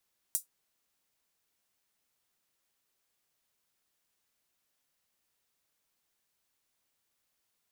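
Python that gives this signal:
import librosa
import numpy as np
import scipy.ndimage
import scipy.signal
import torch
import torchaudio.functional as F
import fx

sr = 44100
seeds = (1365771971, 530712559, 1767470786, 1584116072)

y = fx.drum_hat(sr, length_s=0.24, from_hz=8100.0, decay_s=0.13)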